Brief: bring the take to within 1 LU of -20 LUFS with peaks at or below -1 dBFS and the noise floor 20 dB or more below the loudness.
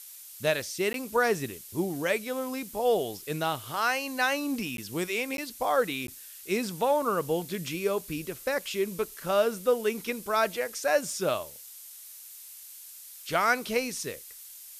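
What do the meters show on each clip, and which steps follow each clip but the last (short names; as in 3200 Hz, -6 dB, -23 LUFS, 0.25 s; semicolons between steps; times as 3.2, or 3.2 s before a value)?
dropouts 4; longest dropout 12 ms; noise floor -47 dBFS; noise floor target -49 dBFS; loudness -29.0 LUFS; peak -10.5 dBFS; loudness target -20.0 LUFS
-> interpolate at 0.93/4.77/5.37/6.07, 12 ms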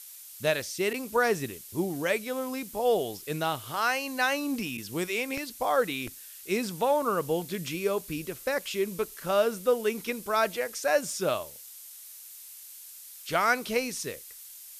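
dropouts 0; noise floor -47 dBFS; noise floor target -49 dBFS
-> denoiser 6 dB, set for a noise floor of -47 dBFS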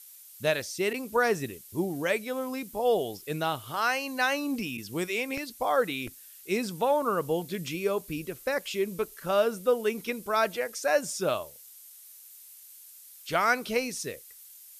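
noise floor -51 dBFS; loudness -29.0 LUFS; peak -10.5 dBFS; loudness target -20.0 LUFS
-> gain +9 dB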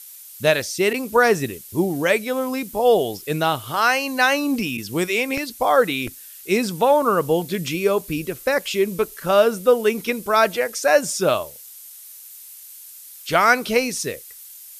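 loudness -20.0 LUFS; peak -1.5 dBFS; noise floor -42 dBFS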